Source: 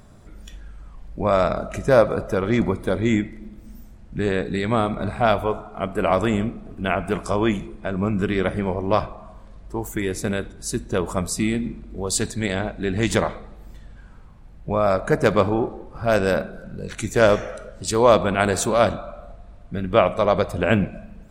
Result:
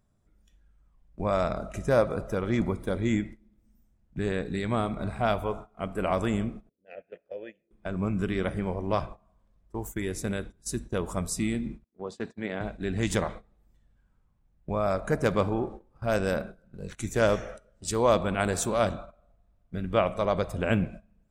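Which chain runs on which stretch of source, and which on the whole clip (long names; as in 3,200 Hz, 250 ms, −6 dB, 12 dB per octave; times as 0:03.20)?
0:06.69–0:07.71: formant filter e + low-pass that shuts in the quiet parts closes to 320 Hz, open at −29 dBFS
0:11.84–0:12.61: band-pass filter 210–2,300 Hz + downward expander −36 dBFS
whole clip: parametric band 4,400 Hz −4 dB 0.23 octaves; noise gate −32 dBFS, range −17 dB; bass and treble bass +3 dB, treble +3 dB; level −8 dB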